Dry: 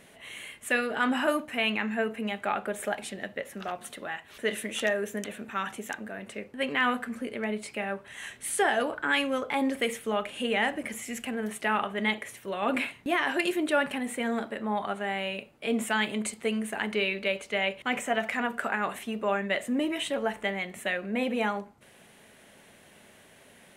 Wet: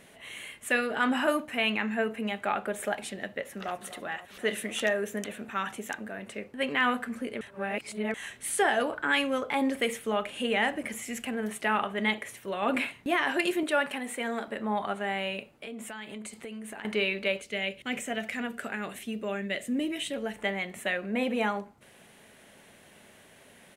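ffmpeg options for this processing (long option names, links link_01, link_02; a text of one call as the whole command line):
ffmpeg -i in.wav -filter_complex "[0:a]asplit=2[link_01][link_02];[link_02]afade=type=in:start_time=3.3:duration=0.01,afade=type=out:start_time=3.75:duration=0.01,aecho=0:1:250|500|750|1000|1250|1500|1750|2000|2250|2500|2750:0.199526|0.149645|0.112234|0.0841751|0.0631313|0.0473485|0.0355114|0.0266335|0.0199752|0.0149814|0.011236[link_03];[link_01][link_03]amix=inputs=2:normalize=0,asettb=1/sr,asplit=3[link_04][link_05][link_06];[link_04]atrim=end=13.634[link_07];[link_05]atrim=start=13.63:end=14.48,asetpts=PTS-STARTPTS,afade=type=in:duration=0.004:curve=qsin,afade=type=out:start_time=0.846:duration=0.004:curve=qsin,highpass=frequency=370:poles=1[link_08];[link_06]atrim=start=14.476[link_09];[link_07][link_08]acrossfade=duration=0.004:curve1=hsin:curve2=qsin[link_10];[link_10][link_09]acrossfade=duration=0.004:curve1=qsin:curve2=hsin,asettb=1/sr,asplit=3[link_11][link_12][link_13];[link_11]atrim=end=15.534[link_14];[link_12]atrim=start=15.53:end=16.85,asetpts=PTS-STARTPTS,afade=type=in:duration=0.004:curve=qsin,afade=type=out:start_time=1.316:duration=0.004:curve=qsin,acompressor=threshold=-37dB:ratio=8:attack=3.2:release=140:knee=1:detection=peak[link_15];[link_13]atrim=start=16.846[link_16];[link_14][link_15]acrossfade=duration=0.004:curve1=hsin:curve2=qsin[link_17];[link_17][link_16]acrossfade=duration=0.004:curve1=qsin:curve2=hsin,asettb=1/sr,asplit=3[link_18][link_19][link_20];[link_18]atrim=end=17.404[link_21];[link_19]atrim=start=17.4:end=20.39,asetpts=PTS-STARTPTS,afade=type=in:duration=0.004:curve=qsin,afade=type=out:start_time=2.986:duration=0.004:curve=qsin,equalizer=frequency=980:width_type=o:width=1.4:gain=-12[link_22];[link_20]atrim=start=20.386[link_23];[link_21][link_22]acrossfade=duration=0.004:curve1=hsin:curve2=qsin[link_24];[link_24][link_23]acrossfade=duration=0.004:curve1=qsin:curve2=hsin,asplit=3[link_25][link_26][link_27];[link_25]atrim=end=7.412[link_28];[link_26]atrim=start=7.408:end=8.142,asetpts=PTS-STARTPTS,areverse[link_29];[link_27]atrim=start=8.138[link_30];[link_28][link_29]acrossfade=duration=0.004:curve1=hsin:curve2=hsin[link_31];[link_31][link_30]acrossfade=duration=0.004:curve1=hsin:curve2=hsin" out.wav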